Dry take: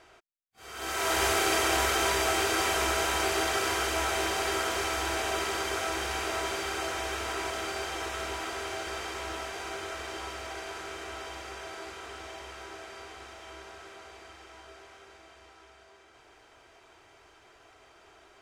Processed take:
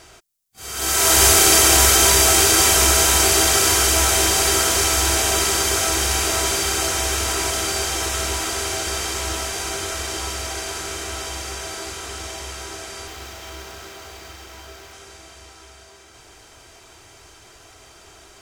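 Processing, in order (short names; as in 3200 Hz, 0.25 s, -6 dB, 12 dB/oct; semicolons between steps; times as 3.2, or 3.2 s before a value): tone controls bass +9 dB, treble +14 dB; 13.07–14.93 running maximum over 3 samples; gain +7 dB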